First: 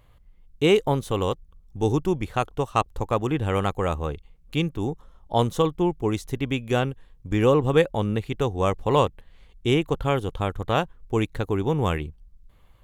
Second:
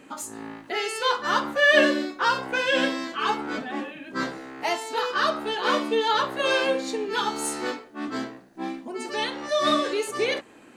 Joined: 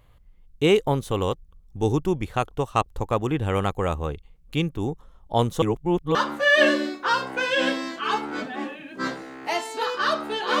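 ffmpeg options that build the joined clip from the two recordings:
-filter_complex "[0:a]apad=whole_dur=10.6,atrim=end=10.6,asplit=2[s0][s1];[s0]atrim=end=5.622[s2];[s1]atrim=start=5.618:end=6.152,asetpts=PTS-STARTPTS,areverse[s3];[1:a]atrim=start=1.308:end=5.76[s4];[s2][s3]acrossfade=d=0.004:c1=hsin:c2=hsin[s5];[s5][s4]acrossfade=d=0.004:c1=hsin:c2=hsin"

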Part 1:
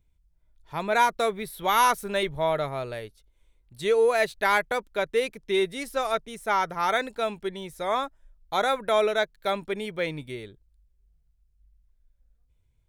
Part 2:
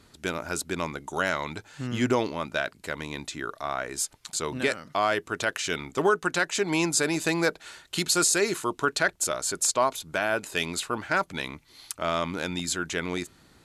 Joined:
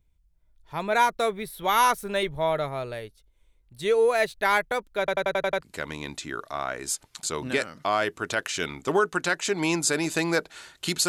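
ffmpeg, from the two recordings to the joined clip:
-filter_complex "[0:a]apad=whole_dur=11.08,atrim=end=11.08,asplit=7[s0][s1][s2][s3][s4][s5][s6];[s0]atrim=end=5.082[s7];[s1]atrim=start=4.988:end=5.082[s8];[s2]atrim=start=4.988:end=5.082[s9];[s3]atrim=start=4.988:end=5.082[s10];[s4]atrim=start=4.988:end=5.082[s11];[s5]atrim=start=4.988:end=5.082[s12];[s6]atrim=start=4.988:end=5.082[s13];[1:a]atrim=start=2.718:end=8.18[s14];[s7][s8]acrossfade=d=0.004:c1=hsin:c2=hsin[s15];[s15][s9]acrossfade=d=0.004:c1=hsin:c2=hsin[s16];[s16][s10]acrossfade=d=0.004:c1=hsin:c2=hsin[s17];[s17][s11]acrossfade=d=0.004:c1=hsin:c2=hsin[s18];[s18][s12]acrossfade=d=0.004:c1=hsin:c2=hsin[s19];[s19][s13]acrossfade=d=0.004:c1=hsin:c2=hsin[s20];[s20][s14]acrossfade=d=0.004:c1=hsin:c2=hsin"

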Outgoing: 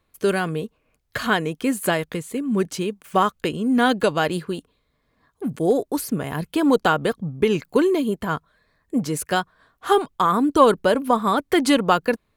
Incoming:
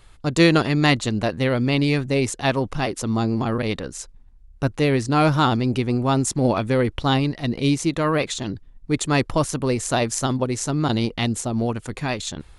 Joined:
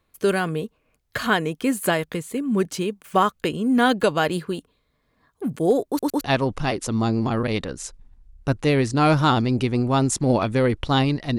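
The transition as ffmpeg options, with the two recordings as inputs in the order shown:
-filter_complex "[0:a]apad=whole_dur=11.38,atrim=end=11.38,asplit=3[s0][s1][s2];[s0]atrim=end=5.992[s3];[s1]atrim=start=5.878:end=5.992[s4];[s2]atrim=start=5.878:end=5.992[s5];[1:a]atrim=start=2.358:end=7.53[s6];[s3][s4]acrossfade=d=0.004:c1=hsin:c2=hsin[s7];[s7][s5]acrossfade=d=0.004:c1=hsin:c2=hsin[s8];[s8][s6]acrossfade=d=0.004:c1=hsin:c2=hsin"

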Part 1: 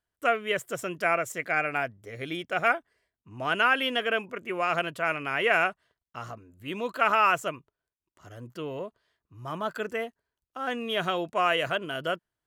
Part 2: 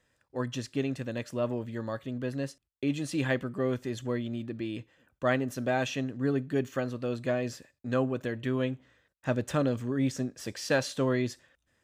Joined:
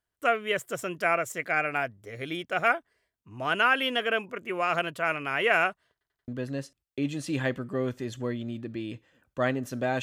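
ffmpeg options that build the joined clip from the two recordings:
-filter_complex "[0:a]apad=whole_dur=10.02,atrim=end=10.02,asplit=4[s0][s1][s2][s3];[s0]atrim=end=6.012[s4];[s1]atrim=start=5.918:end=6.012[s5];[s2]atrim=start=5.918:end=6.012[s6];[s3]atrim=start=5.918:end=6.012[s7];[1:a]atrim=start=2.128:end=5.87[s8];[s4][s5]acrossfade=d=0.004:c1=hsin:c2=hsin[s9];[s9][s6]acrossfade=d=0.004:c1=hsin:c2=hsin[s10];[s10][s7]acrossfade=d=0.004:c1=hsin:c2=hsin[s11];[s11][s8]acrossfade=d=0.004:c1=hsin:c2=hsin"

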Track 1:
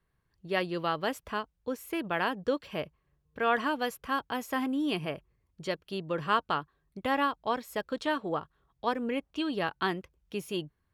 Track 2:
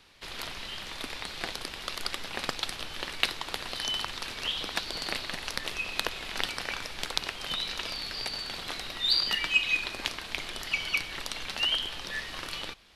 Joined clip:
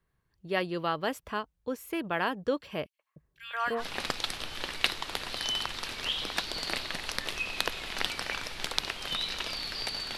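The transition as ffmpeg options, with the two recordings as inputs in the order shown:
-filter_complex "[0:a]asettb=1/sr,asplit=3[s0][s1][s2];[s0]atrim=end=2.864[s3];[s1]atrim=start=2.86:end=3.84,asetpts=PTS-STARTPTS,afade=t=in:d=0.004:c=qsin,afade=t=out:st=0.976:d=0.004:c=qsin,acrossover=split=800|2400[s4][s5][s6];[s5]adelay=130[s7];[s4]adelay=300[s8];[s8][s7][s6]amix=inputs=3:normalize=0,atrim=end_sample=43218[s9];[s2]atrim=start=3.836[s10];[s3][s9]acrossfade=d=0.004:c1=hsin:c2=qsin[s11];[s11][s10]acrossfade=d=0.004:c1=qsin:c2=hsin,apad=whole_dur=10.17,atrim=end=10.17,atrim=end=3.84,asetpts=PTS-STARTPTS[s12];[1:a]atrim=start=2.15:end=8.56,asetpts=PTS-STARTPTS[s13];[s12][s13]acrossfade=d=0.08:c1=tri:c2=tri"

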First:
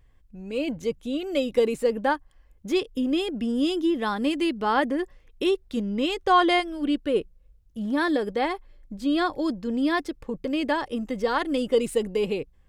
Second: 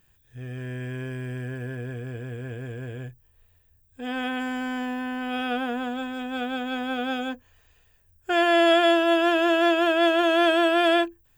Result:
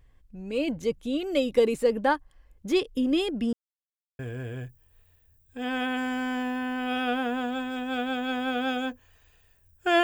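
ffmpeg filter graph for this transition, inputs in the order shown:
-filter_complex "[0:a]apad=whole_dur=10.03,atrim=end=10.03,asplit=2[s0][s1];[s0]atrim=end=3.53,asetpts=PTS-STARTPTS,afade=t=out:st=3.526:d=0.004:c=hsin[s2];[s1]atrim=start=3.53:end=4.19,asetpts=PTS-STARTPTS,volume=0[s3];[1:a]atrim=start=2.62:end=8.46,asetpts=PTS-STARTPTS,afade=t=in:d=0.004:c=hsin[s4];[s2][s3][s4]concat=n=3:v=0:a=1"

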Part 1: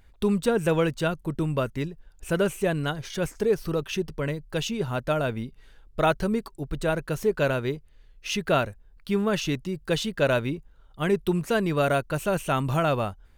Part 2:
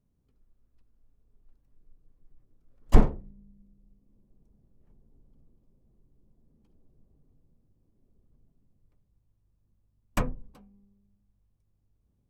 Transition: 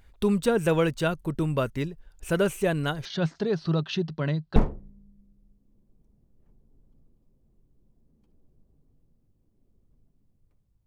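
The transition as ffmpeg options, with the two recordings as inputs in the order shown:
-filter_complex "[0:a]asettb=1/sr,asplit=3[s0][s1][s2];[s0]atrim=end=3.054[s3];[s1]atrim=start=3.05:end=4.56,asetpts=PTS-STARTPTS,afade=t=in:d=0.004:c=qsin,afade=t=out:st=1.506:d=0.004:c=qsin,highpass=130,equalizer=f=160:t=q:w=4:g=9,equalizer=f=470:t=q:w=4:g=-7,equalizer=f=690:t=q:w=4:g=4,equalizer=f=2300:t=q:w=4:g=-7,equalizer=f=4100:t=q:w=4:g=8,lowpass=f=5000:w=0.5412,lowpass=f=5000:w=1.3066[s4];[s2]atrim=start=4.556[s5];[s3][s4]acrossfade=d=0.004:c1=hsin:c2=qsin[s6];[s6][s5]acrossfade=d=0.004:c1=qsin:c2=hsin,apad=whole_dur=10.86,atrim=end=10.86,atrim=end=4.562[s7];[1:a]atrim=start=2.968:end=9.27[s8];[s7][s8]acrossfade=d=0.004:c1=hsin:c2=hsin"

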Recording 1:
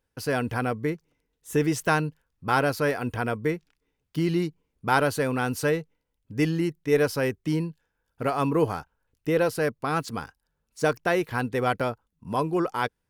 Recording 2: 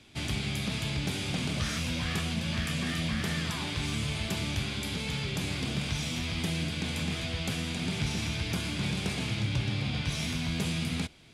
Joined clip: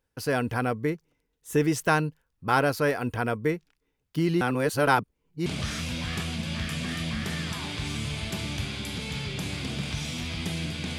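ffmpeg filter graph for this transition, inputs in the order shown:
-filter_complex "[0:a]apad=whole_dur=10.98,atrim=end=10.98,asplit=2[s0][s1];[s0]atrim=end=4.412[s2];[s1]atrim=start=4.408:end=5.462,asetpts=PTS-STARTPTS,areverse[s3];[1:a]atrim=start=1.438:end=6.96[s4];[s2][s3]acrossfade=d=0.004:c1=hsin:c2=hsin[s5];[s5][s4]acrossfade=d=0.004:c1=hsin:c2=hsin"

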